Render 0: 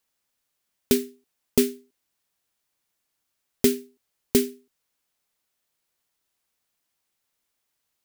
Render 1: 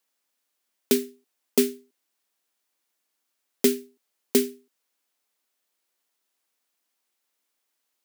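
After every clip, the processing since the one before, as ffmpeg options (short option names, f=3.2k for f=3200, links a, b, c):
-af "highpass=f=220:w=0.5412,highpass=f=220:w=1.3066"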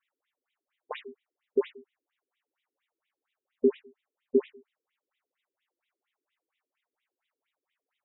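-af "asoftclip=type=tanh:threshold=-18.5dB,afftfilt=real='re*between(b*sr/1024,320*pow(2800/320,0.5+0.5*sin(2*PI*4.3*pts/sr))/1.41,320*pow(2800/320,0.5+0.5*sin(2*PI*4.3*pts/sr))*1.41)':imag='im*between(b*sr/1024,320*pow(2800/320,0.5+0.5*sin(2*PI*4.3*pts/sr))/1.41,320*pow(2800/320,0.5+0.5*sin(2*PI*4.3*pts/sr))*1.41)':win_size=1024:overlap=0.75,volume=5.5dB"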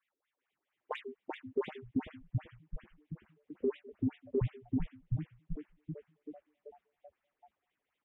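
-filter_complex "[0:a]asplit=2[a][b];[b]asplit=8[c][d][e][f][g][h][i][j];[c]adelay=385,afreqshift=-140,volume=-3.5dB[k];[d]adelay=770,afreqshift=-280,volume=-8.5dB[l];[e]adelay=1155,afreqshift=-420,volume=-13.6dB[m];[f]adelay=1540,afreqshift=-560,volume=-18.6dB[n];[g]adelay=1925,afreqshift=-700,volume=-23.6dB[o];[h]adelay=2310,afreqshift=-840,volume=-28.7dB[p];[i]adelay=2695,afreqshift=-980,volume=-33.7dB[q];[j]adelay=3080,afreqshift=-1120,volume=-38.8dB[r];[k][l][m][n][o][p][q][r]amix=inputs=8:normalize=0[s];[a][s]amix=inputs=2:normalize=0,alimiter=limit=-23.5dB:level=0:latency=1:release=22,adynamicsmooth=sensitivity=3:basefreq=3.4k"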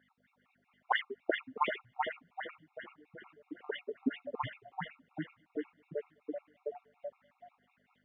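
-af "aeval=exprs='val(0)+0.000501*(sin(2*PI*50*n/s)+sin(2*PI*2*50*n/s)/2+sin(2*PI*3*50*n/s)/3+sin(2*PI*4*50*n/s)/4+sin(2*PI*5*50*n/s)/5)':c=same,highpass=570,lowpass=2.7k,afftfilt=real='re*gt(sin(2*PI*5.4*pts/sr)*(1-2*mod(floor(b*sr/1024/710),2)),0)':imag='im*gt(sin(2*PI*5.4*pts/sr)*(1-2*mod(floor(b*sr/1024/710),2)),0)':win_size=1024:overlap=0.75,volume=18dB"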